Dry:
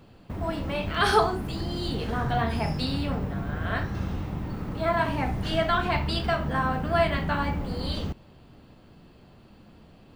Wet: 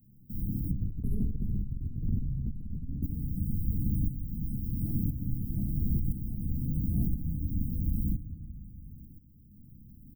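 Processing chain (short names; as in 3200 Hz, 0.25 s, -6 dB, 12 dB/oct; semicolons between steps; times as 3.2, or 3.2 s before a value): octaver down 1 oct, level +2 dB; tone controls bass -14 dB, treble +10 dB; reverb removal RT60 1.1 s; feedback echo 0.181 s, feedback 46%, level -18 dB; reverb RT60 1.4 s, pre-delay 4 ms, DRR 0 dB; tremolo saw up 0.98 Hz, depth 70%; inverse Chebyshev band-stop 770–5500 Hz, stop band 70 dB; 0.71–3.03 tilt -3 dB/oct; short-mantissa float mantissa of 8-bit; negative-ratio compressor -37 dBFS, ratio -1; gain +8 dB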